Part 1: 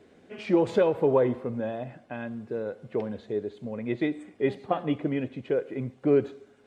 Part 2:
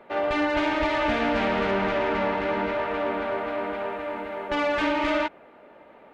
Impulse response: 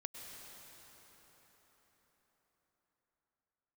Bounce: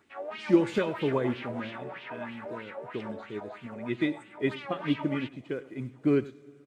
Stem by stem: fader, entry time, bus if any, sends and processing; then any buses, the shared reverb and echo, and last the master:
+2.5 dB, 0.00 s, send -18.5 dB, echo send -17.5 dB, high-order bell 630 Hz -9 dB 1.3 oct; upward expansion 1.5:1, over -46 dBFS
-8.0 dB, 0.00 s, no send, no echo send, wah-wah 3.1 Hz 430–3300 Hz, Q 3; wow and flutter 99 cents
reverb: on, RT60 5.1 s, pre-delay 93 ms
echo: delay 98 ms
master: treble shelf 4.7 kHz +11 dB

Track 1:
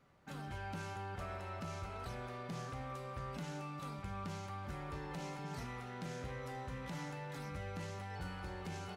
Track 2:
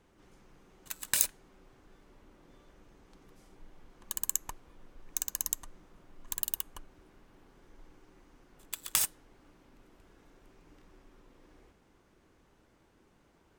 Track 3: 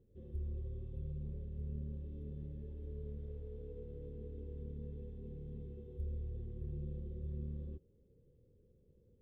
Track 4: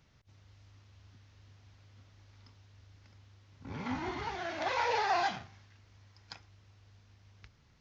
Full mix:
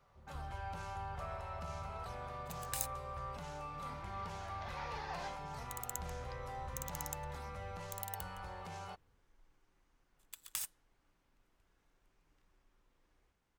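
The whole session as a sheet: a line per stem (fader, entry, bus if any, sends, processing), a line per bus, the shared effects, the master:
-2.5 dB, 0.00 s, no send, high-order bell 740 Hz +8 dB
-12.0 dB, 1.60 s, no send, none
-6.0 dB, 0.00 s, no send, none
-13.5 dB, 0.00 s, no send, none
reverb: none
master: peaking EQ 310 Hz -9 dB 1.9 oct

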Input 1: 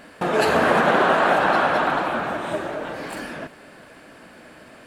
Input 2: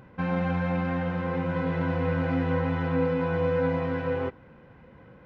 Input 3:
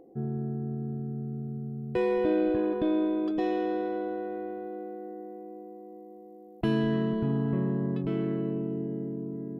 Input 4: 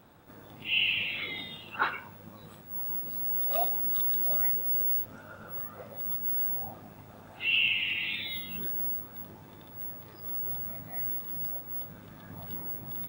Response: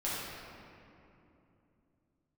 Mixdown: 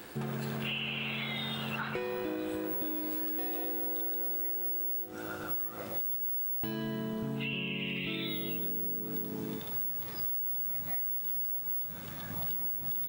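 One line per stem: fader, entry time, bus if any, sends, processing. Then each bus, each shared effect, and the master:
-11.0 dB, 0.00 s, no send, compression 12:1, threshold -28 dBFS, peak gain reduction 15 dB
-19.0 dB, 0.00 s, no send, high-pass 89 Hz 24 dB/octave
-1.0 dB, 0.00 s, send -20.5 dB, none
+2.0 dB, 0.00 s, send -19 dB, compression 3:1, threshold -38 dBFS, peak gain reduction 11.5 dB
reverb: on, RT60 2.9 s, pre-delay 5 ms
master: treble shelf 2.1 kHz +11.5 dB; compression 12:1, threshold -32 dBFS, peak gain reduction 14 dB

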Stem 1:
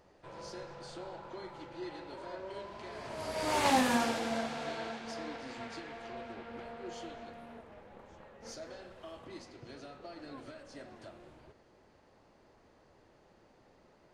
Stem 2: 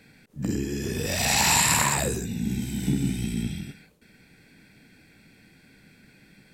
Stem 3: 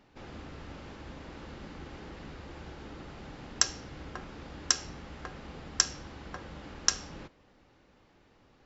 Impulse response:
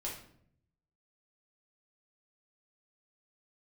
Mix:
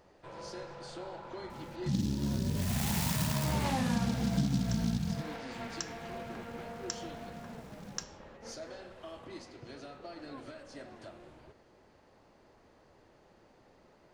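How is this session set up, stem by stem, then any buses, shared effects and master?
+1.5 dB, 0.00 s, no send, none
-6.5 dB, 1.50 s, no send, resonant low shelf 300 Hz +11.5 dB, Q 1.5; delay time shaken by noise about 4.5 kHz, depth 0.098 ms
-12.5 dB, 1.10 s, no send, none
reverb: none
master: compression 2.5:1, threshold -32 dBFS, peak gain reduction 12.5 dB

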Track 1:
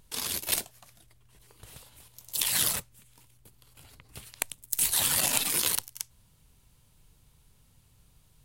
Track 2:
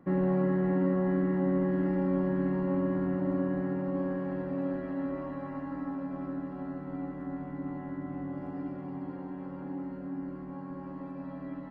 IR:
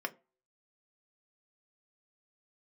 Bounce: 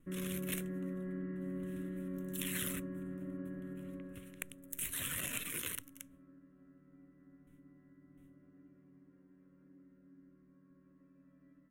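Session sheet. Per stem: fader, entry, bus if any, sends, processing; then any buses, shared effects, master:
-6.5 dB, 0.00 s, no send, gate with hold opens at -49 dBFS; treble shelf 5 kHz -6.5 dB
3.89 s -12 dB -> 4.58 s -22.5 dB, 0.00 s, no send, endings held to a fixed fall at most 190 dB/s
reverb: none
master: static phaser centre 2 kHz, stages 4

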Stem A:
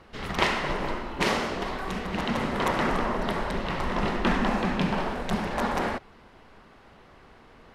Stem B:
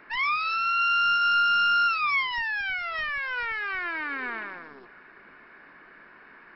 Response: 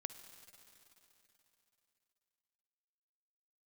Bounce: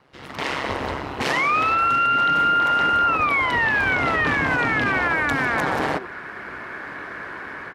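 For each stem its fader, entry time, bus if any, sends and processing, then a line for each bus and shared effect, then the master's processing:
-1.5 dB, 0.00 s, no send, ring modulator 68 Hz
-1.0 dB, 1.20 s, send -6 dB, low-pass 2.4 kHz 24 dB/octave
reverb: on, RT60 3.4 s, pre-delay 48 ms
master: high-pass 170 Hz 6 dB/octave; level rider gain up to 15.5 dB; peak limiter -12.5 dBFS, peak gain reduction 11 dB

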